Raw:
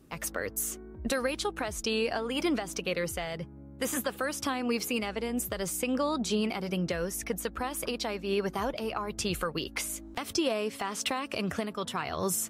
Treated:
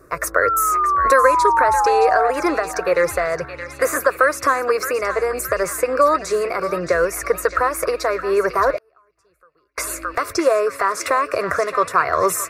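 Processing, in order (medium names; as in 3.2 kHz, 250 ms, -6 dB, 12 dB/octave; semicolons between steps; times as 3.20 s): in parallel at -2.5 dB: gain riding within 3 dB; on the sum: static phaser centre 840 Hz, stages 6; 0.42–2.31 s: painted sound fall 700–1400 Hz -34 dBFS; peaking EQ 980 Hz +14.5 dB 2.1 oct; on a send: band-passed feedback delay 620 ms, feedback 69%, band-pass 2.9 kHz, level -7.5 dB; 8.77–9.78 s: on the sum: inverted gate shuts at -28 dBFS, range -39 dB; trim +3 dB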